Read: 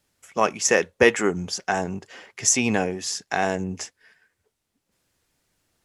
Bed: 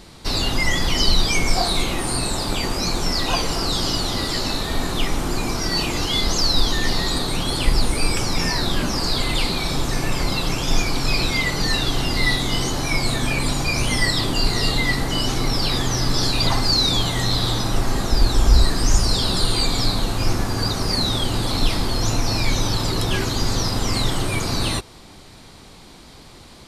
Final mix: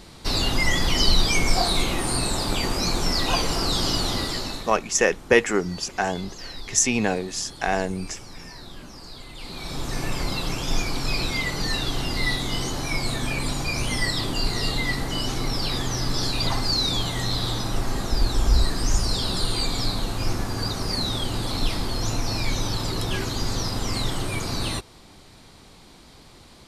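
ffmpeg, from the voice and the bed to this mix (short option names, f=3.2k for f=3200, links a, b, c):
-filter_complex "[0:a]adelay=4300,volume=-0.5dB[a];[1:a]volume=13dB,afade=t=out:st=4.1:d=0.69:silence=0.125893,afade=t=in:st=9.37:d=0.65:silence=0.188365[b];[a][b]amix=inputs=2:normalize=0"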